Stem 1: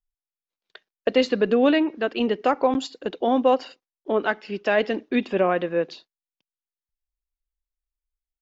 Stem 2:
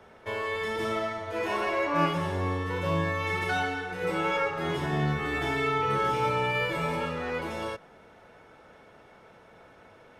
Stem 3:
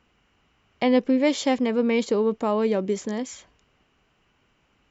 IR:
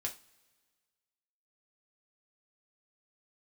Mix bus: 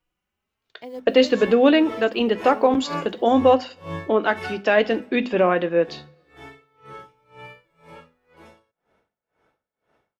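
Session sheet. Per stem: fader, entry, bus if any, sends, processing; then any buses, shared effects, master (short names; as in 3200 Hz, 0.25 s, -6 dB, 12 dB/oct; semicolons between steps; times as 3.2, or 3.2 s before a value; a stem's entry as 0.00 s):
+0.5 dB, 0.00 s, send -6.5 dB, dry
4.79 s -2 dB -> 5.02 s -11.5 dB, 0.95 s, no send, dB-linear tremolo 2 Hz, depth 27 dB
-13.5 dB, 0.00 s, no send, short-mantissa float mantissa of 4-bit; endless flanger 3.7 ms +1 Hz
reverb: on, pre-delay 3 ms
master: notches 50/100/150/200/250 Hz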